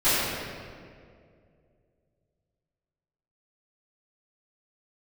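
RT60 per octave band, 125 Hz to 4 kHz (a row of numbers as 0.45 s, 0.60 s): 3.0 s, 2.6 s, 2.6 s, 1.9 s, 1.7 s, 1.3 s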